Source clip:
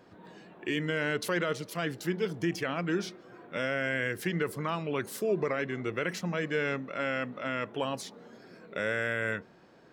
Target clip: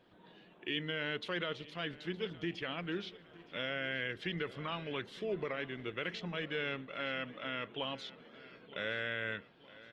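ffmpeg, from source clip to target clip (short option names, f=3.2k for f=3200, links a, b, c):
-filter_complex "[0:a]lowpass=f=3.4k:t=q:w=3.8,asplit=2[a][b];[b]aecho=0:1:917|1834|2751|3668:0.119|0.0618|0.0321|0.0167[c];[a][c]amix=inputs=2:normalize=0,volume=-8.5dB" -ar 48000 -c:a libopus -b:a 24k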